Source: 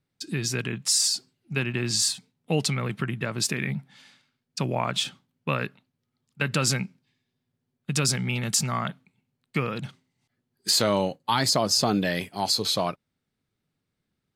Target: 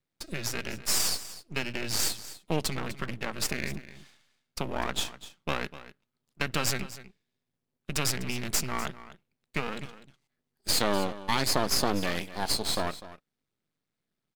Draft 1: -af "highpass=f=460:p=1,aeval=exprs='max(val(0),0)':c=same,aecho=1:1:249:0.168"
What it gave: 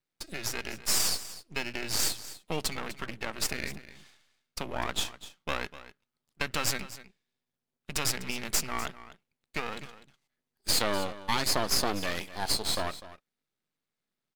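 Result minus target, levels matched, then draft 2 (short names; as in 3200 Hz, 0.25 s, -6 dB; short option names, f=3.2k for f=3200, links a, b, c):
125 Hz band -4.5 dB
-af "highpass=f=160:p=1,aeval=exprs='max(val(0),0)':c=same,aecho=1:1:249:0.168"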